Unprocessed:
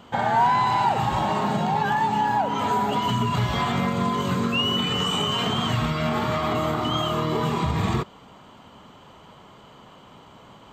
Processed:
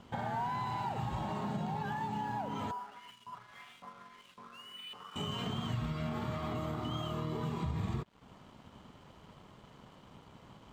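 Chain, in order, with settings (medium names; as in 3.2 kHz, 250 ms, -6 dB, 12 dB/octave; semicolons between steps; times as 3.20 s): bass shelf 260 Hz +9.5 dB; compression 2:1, threshold -32 dBFS, peak gain reduction 10.5 dB; 2.71–5.16 s: LFO band-pass saw up 1.8 Hz 920–3400 Hz; crossover distortion -51.5 dBFS; trim -8 dB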